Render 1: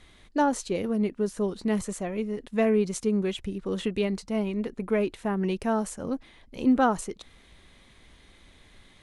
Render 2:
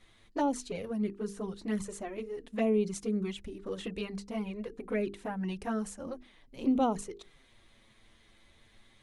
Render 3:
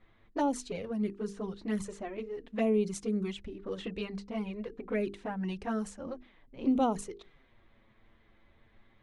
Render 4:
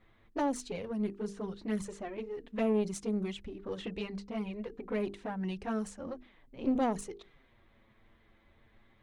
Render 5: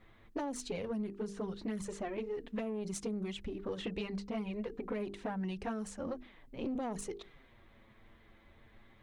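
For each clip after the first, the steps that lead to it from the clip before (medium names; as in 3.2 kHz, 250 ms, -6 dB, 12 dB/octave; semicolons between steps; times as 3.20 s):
touch-sensitive flanger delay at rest 9.8 ms, full sweep at -19 dBFS; hum notches 50/100/150/200/250/300/350/400/450 Hz; trim -3.5 dB
level-controlled noise filter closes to 1.7 kHz, open at -28 dBFS
single-diode clipper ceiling -28 dBFS
peak limiter -26 dBFS, peak gain reduction 7 dB; compression, threshold -38 dBFS, peak gain reduction 8.5 dB; trim +3.5 dB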